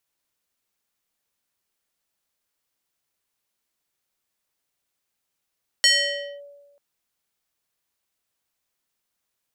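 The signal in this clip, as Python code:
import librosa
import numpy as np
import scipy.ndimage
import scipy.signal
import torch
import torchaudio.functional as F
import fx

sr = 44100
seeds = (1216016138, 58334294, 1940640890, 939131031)

y = fx.fm2(sr, length_s=0.94, level_db=-11.5, carrier_hz=571.0, ratio=4.35, index=2.6, index_s=0.57, decay_s=1.24, shape='linear')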